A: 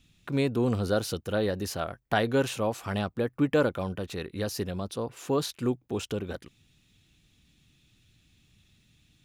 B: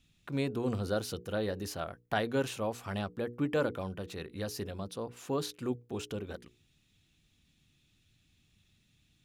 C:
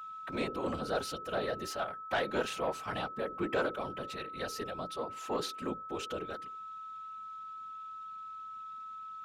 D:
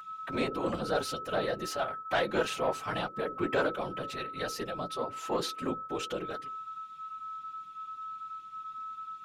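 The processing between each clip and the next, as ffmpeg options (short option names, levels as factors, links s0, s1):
-af "bandreject=f=60:t=h:w=6,bandreject=f=120:t=h:w=6,bandreject=f=180:t=h:w=6,bandreject=f=240:t=h:w=6,bandreject=f=300:t=h:w=6,bandreject=f=360:t=h:w=6,bandreject=f=420:t=h:w=6,bandreject=f=480:t=h:w=6,volume=0.531"
-filter_complex "[0:a]afftfilt=real='hypot(re,im)*cos(2*PI*random(0))':imag='hypot(re,im)*sin(2*PI*random(1))':win_size=512:overlap=0.75,asplit=2[s0][s1];[s1]highpass=f=720:p=1,volume=6.31,asoftclip=type=tanh:threshold=0.1[s2];[s0][s2]amix=inputs=2:normalize=0,lowpass=f=3700:p=1,volume=0.501,aeval=exprs='val(0)+0.00794*sin(2*PI*1300*n/s)':c=same"
-af "flanger=delay=5.7:depth=2:regen=-35:speed=1.3:shape=sinusoidal,volume=2.24"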